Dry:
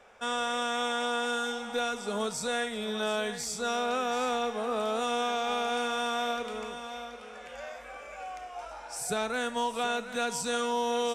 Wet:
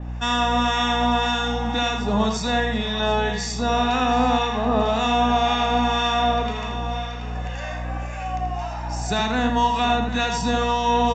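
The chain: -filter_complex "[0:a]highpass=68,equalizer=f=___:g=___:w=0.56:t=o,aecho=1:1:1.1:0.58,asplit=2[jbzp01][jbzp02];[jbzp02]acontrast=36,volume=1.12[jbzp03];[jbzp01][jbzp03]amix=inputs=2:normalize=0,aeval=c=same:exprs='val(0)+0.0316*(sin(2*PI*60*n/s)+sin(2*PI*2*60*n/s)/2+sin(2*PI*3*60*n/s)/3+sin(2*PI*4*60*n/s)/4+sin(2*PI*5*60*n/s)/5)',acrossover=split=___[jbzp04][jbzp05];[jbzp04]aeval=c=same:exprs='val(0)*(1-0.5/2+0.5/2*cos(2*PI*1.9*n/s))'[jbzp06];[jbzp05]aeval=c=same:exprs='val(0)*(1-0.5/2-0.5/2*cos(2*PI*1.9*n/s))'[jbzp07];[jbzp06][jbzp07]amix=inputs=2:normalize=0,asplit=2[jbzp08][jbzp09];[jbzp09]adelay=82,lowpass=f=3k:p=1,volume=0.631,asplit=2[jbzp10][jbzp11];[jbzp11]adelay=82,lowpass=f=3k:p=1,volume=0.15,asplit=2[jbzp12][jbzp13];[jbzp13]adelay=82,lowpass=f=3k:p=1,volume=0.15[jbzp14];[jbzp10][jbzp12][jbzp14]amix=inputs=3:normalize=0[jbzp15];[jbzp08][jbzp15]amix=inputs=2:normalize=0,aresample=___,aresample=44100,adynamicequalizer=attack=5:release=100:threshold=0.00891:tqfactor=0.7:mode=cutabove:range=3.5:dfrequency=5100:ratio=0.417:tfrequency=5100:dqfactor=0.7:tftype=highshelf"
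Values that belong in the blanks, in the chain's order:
310, 13, 1100, 16000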